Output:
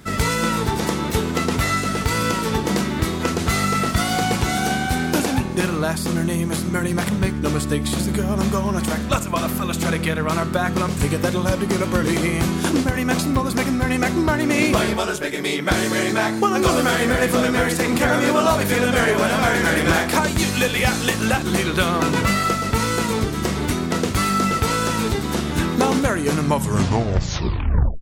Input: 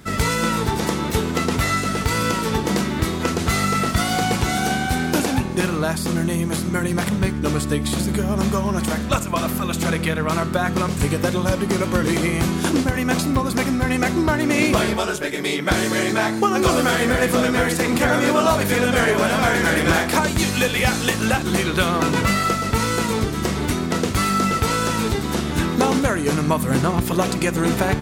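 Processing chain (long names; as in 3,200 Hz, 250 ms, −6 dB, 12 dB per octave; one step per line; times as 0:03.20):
turntable brake at the end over 1.60 s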